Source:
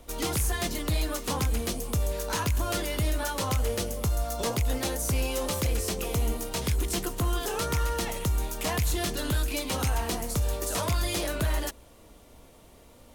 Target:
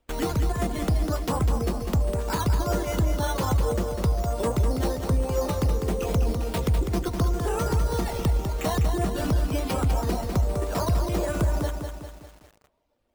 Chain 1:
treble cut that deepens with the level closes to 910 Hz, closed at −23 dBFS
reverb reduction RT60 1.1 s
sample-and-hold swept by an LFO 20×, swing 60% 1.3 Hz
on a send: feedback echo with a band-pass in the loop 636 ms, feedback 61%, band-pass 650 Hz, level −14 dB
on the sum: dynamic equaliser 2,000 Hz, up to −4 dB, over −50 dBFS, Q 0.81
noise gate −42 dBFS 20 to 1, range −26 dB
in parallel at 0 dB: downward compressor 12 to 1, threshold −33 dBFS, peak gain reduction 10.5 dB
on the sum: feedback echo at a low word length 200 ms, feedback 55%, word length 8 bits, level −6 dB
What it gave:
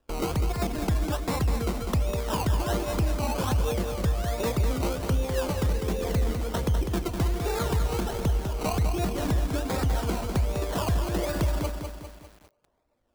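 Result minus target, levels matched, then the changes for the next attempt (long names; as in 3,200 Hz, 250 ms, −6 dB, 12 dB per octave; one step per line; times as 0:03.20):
downward compressor: peak gain reduction +6.5 dB; sample-and-hold swept by an LFO: distortion +7 dB
change: sample-and-hold swept by an LFO 7×, swing 60% 1.3 Hz
change: downward compressor 12 to 1, threshold −26 dBFS, peak gain reduction 4 dB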